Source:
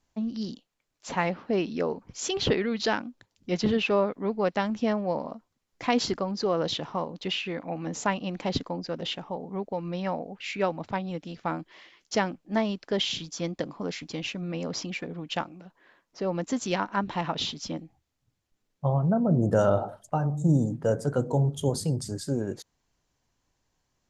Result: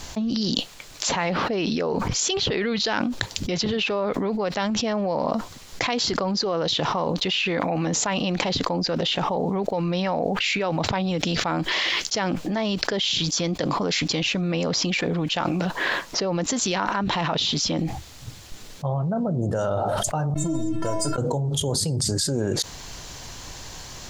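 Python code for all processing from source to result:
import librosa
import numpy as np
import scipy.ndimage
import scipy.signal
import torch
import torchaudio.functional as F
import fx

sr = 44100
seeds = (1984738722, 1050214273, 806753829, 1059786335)

y = fx.chain(x, sr, fx.low_shelf(hz=160.0, db=7.5),
    fx.leveller(passes=1),
    fx.stiff_resonator(f0_hz=320.0, decay_s=0.45, stiffness=0.008), at=(20.34, 21.18))
y = fx.graphic_eq_10(y, sr, hz=(250, 4000, 8000), db=(-4, 5, 3))
y = fx.env_flatten(y, sr, amount_pct=100)
y = y * librosa.db_to_amplitude(-4.0)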